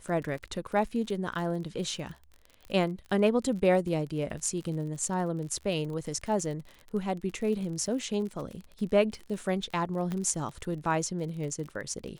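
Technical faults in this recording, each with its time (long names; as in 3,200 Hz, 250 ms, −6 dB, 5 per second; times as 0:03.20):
surface crackle 43 per second −37 dBFS
0:10.12: click −21 dBFS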